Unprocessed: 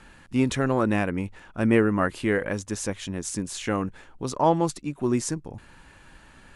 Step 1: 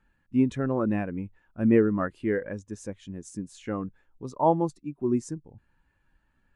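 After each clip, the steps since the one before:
every bin expanded away from the loudest bin 1.5 to 1
level −2 dB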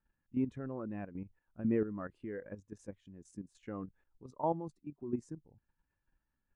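high-shelf EQ 2,600 Hz −7.5 dB
output level in coarse steps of 11 dB
level −7.5 dB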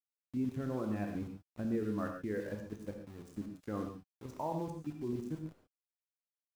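brickwall limiter −32.5 dBFS, peak gain reduction 11.5 dB
centre clipping without the shift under −55.5 dBFS
convolution reverb, pre-delay 3 ms, DRR 3.5 dB
level +4 dB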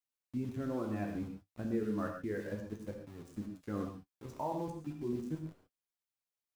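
flanger 0.32 Hz, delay 7 ms, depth 8.8 ms, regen −37%
level +4 dB

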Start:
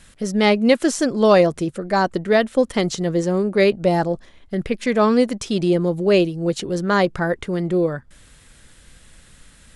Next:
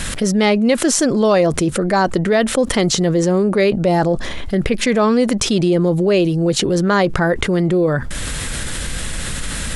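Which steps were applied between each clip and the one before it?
envelope flattener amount 70%
level −1.5 dB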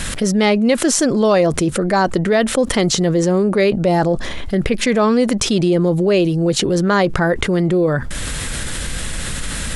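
no processing that can be heard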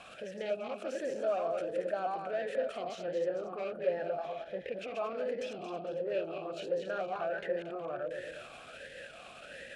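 feedback delay that plays each chunk backwards 114 ms, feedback 60%, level −3.5 dB
soft clipping −12.5 dBFS, distortion −12 dB
formant filter swept between two vowels a-e 1.4 Hz
level −7 dB

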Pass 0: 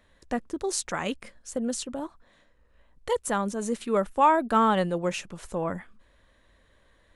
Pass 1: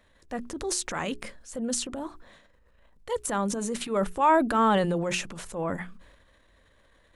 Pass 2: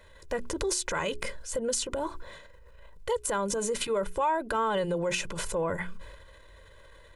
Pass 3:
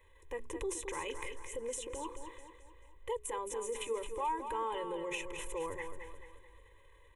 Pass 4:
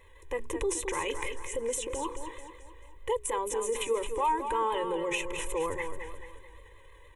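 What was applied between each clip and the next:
transient designer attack −6 dB, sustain +8 dB; mains-hum notches 60/120/180/240/300/360/420 Hz
comb filter 2 ms, depth 69%; downward compressor 4 to 1, threshold −33 dBFS, peak gain reduction 16 dB; level +5.5 dB
phaser with its sweep stopped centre 960 Hz, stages 8; on a send: repeating echo 218 ms, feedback 45%, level −8 dB; on the sum: level −7 dB
pitch vibrato 6.4 Hz 43 cents; level +7.5 dB

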